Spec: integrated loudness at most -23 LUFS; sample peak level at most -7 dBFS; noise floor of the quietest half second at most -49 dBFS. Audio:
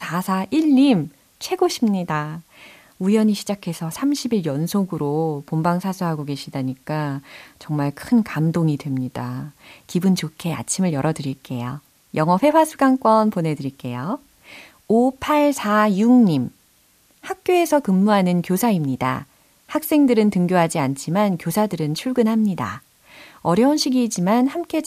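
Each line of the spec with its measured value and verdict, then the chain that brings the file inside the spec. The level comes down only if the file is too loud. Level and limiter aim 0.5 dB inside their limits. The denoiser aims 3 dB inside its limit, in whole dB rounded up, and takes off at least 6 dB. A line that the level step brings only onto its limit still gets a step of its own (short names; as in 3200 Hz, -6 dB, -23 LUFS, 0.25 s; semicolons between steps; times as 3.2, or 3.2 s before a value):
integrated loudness -20.0 LUFS: fail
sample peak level -4.5 dBFS: fail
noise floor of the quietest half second -58 dBFS: OK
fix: gain -3.5 dB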